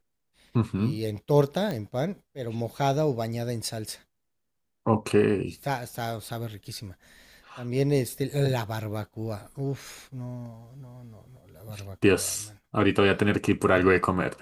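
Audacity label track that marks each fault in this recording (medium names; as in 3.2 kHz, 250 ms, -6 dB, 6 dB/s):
1.710000	1.710000	pop -19 dBFS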